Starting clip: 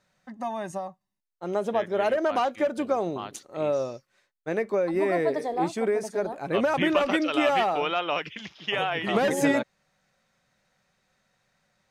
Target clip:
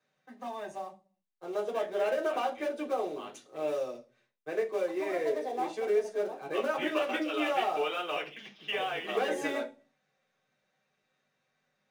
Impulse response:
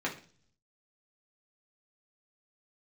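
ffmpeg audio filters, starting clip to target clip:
-filter_complex "[0:a]acrossover=split=310|1300|5600[link_01][link_02][link_03][link_04];[link_01]acompressor=threshold=-47dB:ratio=6[link_05];[link_05][link_02][link_03][link_04]amix=inputs=4:normalize=0,acrusher=bits=4:mode=log:mix=0:aa=0.000001[link_06];[1:a]atrim=start_sample=2205,asetrate=66150,aresample=44100[link_07];[link_06][link_07]afir=irnorm=-1:irlink=0,volume=-9dB"

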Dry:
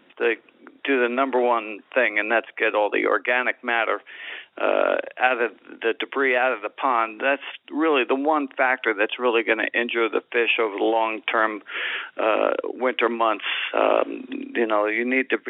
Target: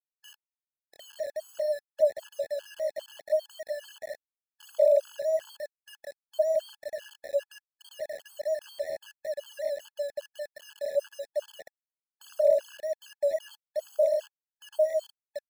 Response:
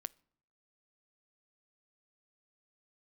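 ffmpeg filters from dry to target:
-af "asuperpass=centerf=600:order=20:qfactor=7.2,aecho=1:1:177:0.531,aeval=exprs='val(0)*gte(abs(val(0)),0.0106)':channel_layout=same,afftfilt=real='re*gt(sin(2*PI*2.5*pts/sr)*(1-2*mod(floor(b*sr/1024/860),2)),0)':imag='im*gt(sin(2*PI*2.5*pts/sr)*(1-2*mod(floor(b*sr/1024/860),2)),0)':win_size=1024:overlap=0.75,volume=3.5dB"

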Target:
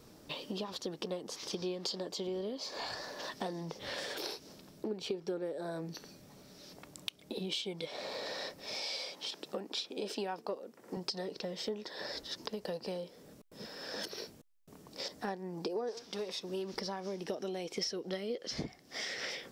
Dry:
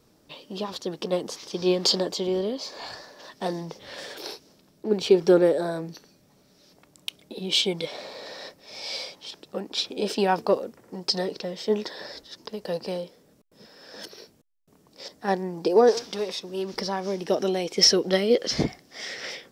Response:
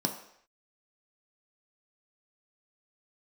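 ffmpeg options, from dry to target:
-filter_complex "[0:a]asettb=1/sr,asplit=3[link_01][link_02][link_03];[link_01]atrim=end=8.744[link_04];[link_02]atrim=start=8.74:end=10.97,asetpts=PTS-STARTPTS,afade=type=in:duration=0.004:curve=qsin,afade=type=out:start_time=2.226:duration=0.004:curve=qsin,highpass=200[link_05];[link_03]atrim=start=10.966[link_06];[link_04][link_05]acrossfade=duration=0.004:curve1=hsin:curve2=qsin[link_07];[link_07][link_06]acrossfade=duration=0.004:curve1=qsin:curve2=hsin,acompressor=threshold=-41dB:ratio=6,volume=4dB"

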